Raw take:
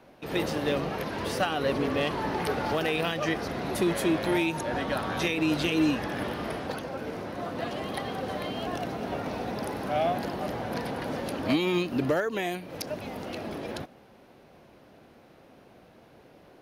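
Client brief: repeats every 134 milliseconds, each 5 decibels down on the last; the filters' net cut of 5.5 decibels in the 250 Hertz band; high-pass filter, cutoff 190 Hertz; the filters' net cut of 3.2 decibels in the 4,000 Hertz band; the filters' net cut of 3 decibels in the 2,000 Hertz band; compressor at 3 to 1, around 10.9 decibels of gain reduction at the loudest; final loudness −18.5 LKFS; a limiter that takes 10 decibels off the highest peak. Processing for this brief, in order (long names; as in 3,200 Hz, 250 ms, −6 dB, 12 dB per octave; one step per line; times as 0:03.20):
high-pass filter 190 Hz
parametric band 250 Hz −6.5 dB
parametric band 2,000 Hz −3 dB
parametric band 4,000 Hz −3 dB
downward compressor 3 to 1, threshold −39 dBFS
brickwall limiter −32.5 dBFS
repeating echo 134 ms, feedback 56%, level −5 dB
level +22 dB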